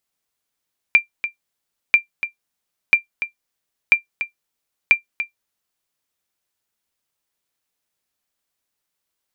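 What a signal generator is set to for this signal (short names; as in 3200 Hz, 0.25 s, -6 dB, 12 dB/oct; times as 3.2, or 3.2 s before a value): sonar ping 2370 Hz, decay 0.12 s, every 0.99 s, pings 5, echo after 0.29 s, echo -11.5 dB -2.5 dBFS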